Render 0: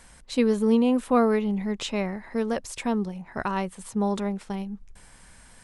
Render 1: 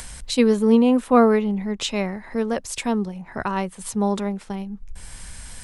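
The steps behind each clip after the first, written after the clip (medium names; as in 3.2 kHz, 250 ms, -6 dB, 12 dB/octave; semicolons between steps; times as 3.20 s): upward compressor, threshold -27 dBFS; three bands expanded up and down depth 40%; trim +3.5 dB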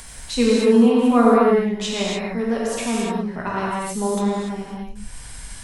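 gated-style reverb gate 320 ms flat, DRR -6 dB; trim -4.5 dB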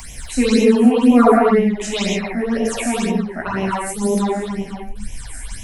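phase shifter stages 8, 2 Hz, lowest notch 130–1400 Hz; trim +6 dB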